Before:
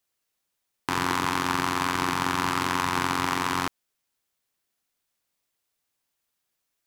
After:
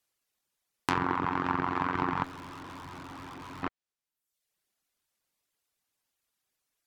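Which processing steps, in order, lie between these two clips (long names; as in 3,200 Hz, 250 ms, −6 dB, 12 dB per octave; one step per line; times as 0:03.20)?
reverb reduction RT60 0.77 s
treble cut that deepens with the level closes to 1,500 Hz, closed at −24 dBFS
0:02.24–0:03.63: tube saturation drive 42 dB, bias 0.4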